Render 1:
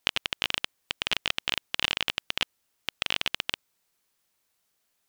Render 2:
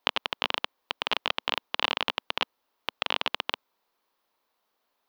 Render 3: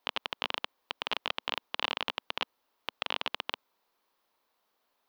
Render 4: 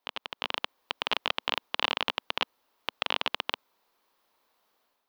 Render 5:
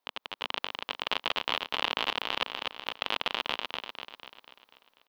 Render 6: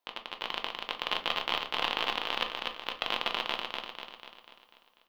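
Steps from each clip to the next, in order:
graphic EQ 125/250/500/1000/4000/8000 Hz -11/+7/+7/+12/+5/-11 dB; gain -4 dB
limiter -12 dBFS, peak gain reduction 11 dB
AGC gain up to 9 dB; gain -4 dB
feedback echo 0.246 s, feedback 52%, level -3.5 dB; gain -2 dB
shoebox room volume 200 m³, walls furnished, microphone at 0.84 m; gain -1.5 dB

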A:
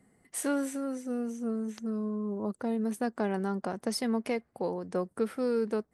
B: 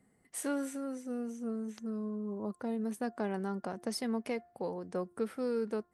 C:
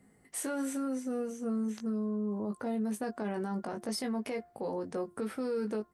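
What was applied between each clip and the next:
de-hum 351.9 Hz, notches 5; gain -4.5 dB
doubler 19 ms -5.5 dB; limiter -31.5 dBFS, peak gain reduction 11 dB; gain +4.5 dB

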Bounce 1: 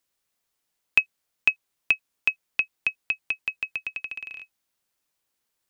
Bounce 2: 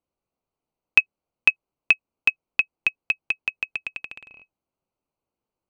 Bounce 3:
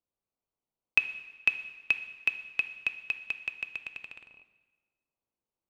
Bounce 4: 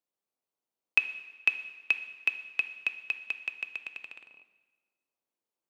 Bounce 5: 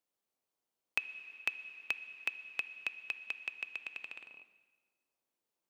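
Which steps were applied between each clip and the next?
Wiener smoothing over 25 samples; gain +4 dB
plate-style reverb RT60 1.3 s, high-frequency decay 0.9×, DRR 9.5 dB; gain -8 dB
HPF 230 Hz 12 dB/oct
compressor 2:1, threshold -42 dBFS, peak gain reduction 13.5 dB; gain +1.5 dB

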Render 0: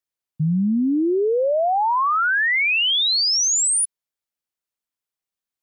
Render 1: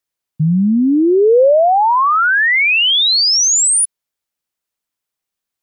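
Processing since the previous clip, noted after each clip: dynamic EQ 510 Hz, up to +4 dB, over -30 dBFS, Q 1.8; gain +6.5 dB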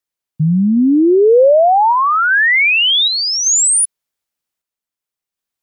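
random-step tremolo 2.6 Hz; gain +1.5 dB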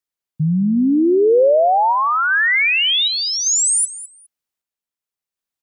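feedback echo 0.206 s, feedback 18%, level -15.5 dB; gain -4 dB

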